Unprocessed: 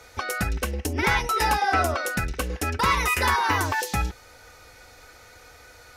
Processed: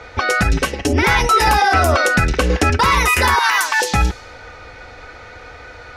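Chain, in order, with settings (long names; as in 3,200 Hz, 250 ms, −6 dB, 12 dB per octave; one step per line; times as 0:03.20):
low-pass that shuts in the quiet parts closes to 2,800 Hz, open at −18.5 dBFS
0:00.52–0:00.93: comb filter 7.1 ms, depth 83%
0:03.39–0:03.80: high-pass filter 1,300 Hz 12 dB per octave
boost into a limiter +18 dB
0:01.47–0:02.70: multiband upward and downward compressor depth 70%
level −5 dB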